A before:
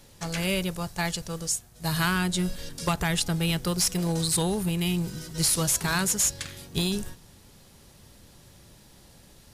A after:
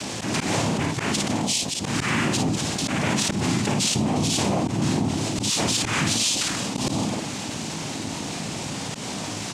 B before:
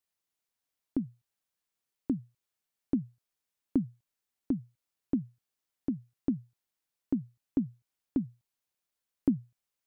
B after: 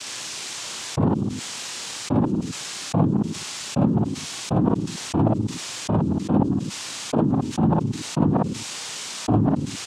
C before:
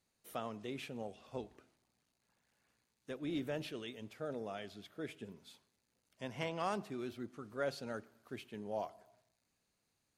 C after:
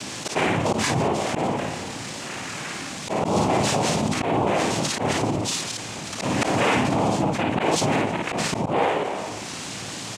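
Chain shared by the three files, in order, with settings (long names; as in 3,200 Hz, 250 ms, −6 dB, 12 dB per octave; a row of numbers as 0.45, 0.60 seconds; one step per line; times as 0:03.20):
delay that plays each chunk backwards 102 ms, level −11 dB
in parallel at −8 dB: gain into a clipping stage and back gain 27 dB
on the sum: cochlear-implant simulation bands 4
on a send: ambience of single reflections 36 ms −10 dB, 55 ms −4 dB
on the sum: volume swells 141 ms
envelope flattener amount 70%
loudness normalisation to −24 LKFS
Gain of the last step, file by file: −2.0, +11.5, +11.5 decibels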